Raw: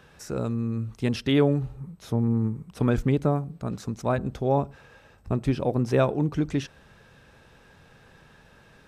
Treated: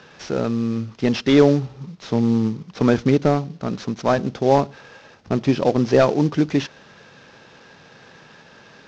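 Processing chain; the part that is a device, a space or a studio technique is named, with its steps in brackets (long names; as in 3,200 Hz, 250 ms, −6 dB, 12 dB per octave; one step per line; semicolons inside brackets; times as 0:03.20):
early wireless headset (high-pass filter 170 Hz 12 dB per octave; variable-slope delta modulation 32 kbit/s)
level +8.5 dB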